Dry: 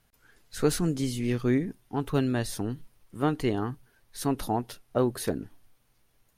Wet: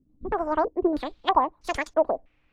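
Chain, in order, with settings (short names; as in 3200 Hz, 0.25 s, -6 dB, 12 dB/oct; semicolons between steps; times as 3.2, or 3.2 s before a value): wide varispeed 2.52×; stepped low-pass 3.1 Hz 260–6000 Hz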